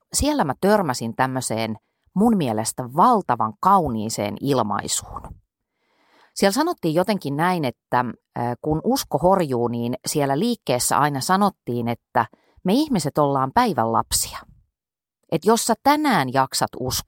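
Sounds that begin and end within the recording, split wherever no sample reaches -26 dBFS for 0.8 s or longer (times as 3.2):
6.37–14.38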